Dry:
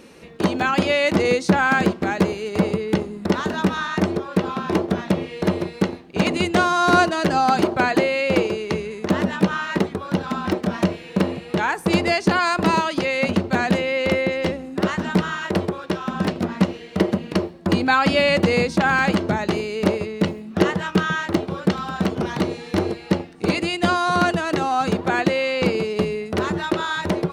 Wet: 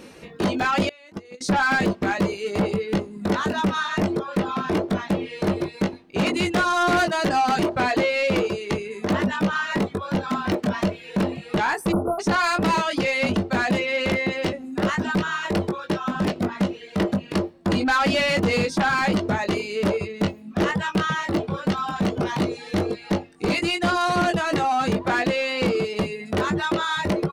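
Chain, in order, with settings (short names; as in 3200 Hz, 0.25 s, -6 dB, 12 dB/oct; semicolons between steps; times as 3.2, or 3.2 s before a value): reverb removal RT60 0.63 s; doubler 20 ms -6 dB; 0.89–1.41 gate -12 dBFS, range -29 dB; in parallel at -1.5 dB: limiter -12 dBFS, peak gain reduction 9 dB; on the sum: soft clip -12 dBFS, distortion -12 dB; 11.92–12.2 spectral delete 1500–9400 Hz; gain -3.5 dB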